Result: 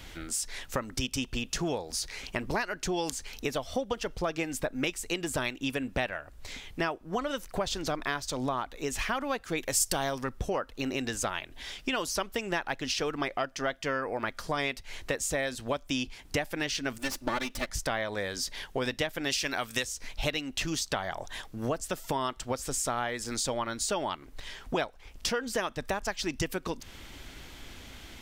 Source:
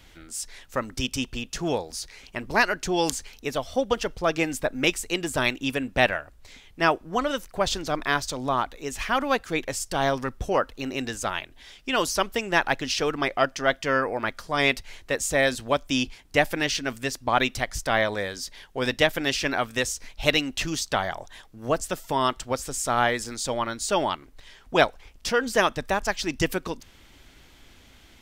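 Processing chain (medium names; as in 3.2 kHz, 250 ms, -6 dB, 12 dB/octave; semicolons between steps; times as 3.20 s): 16.98–17.70 s: comb filter that takes the minimum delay 3.4 ms; 19.30–19.85 s: treble shelf 2.8 kHz +11.5 dB; compression 6:1, threshold -35 dBFS, peak gain reduction 20 dB; 9.57–10.22 s: treble shelf 6 kHz +11 dB; trim +6 dB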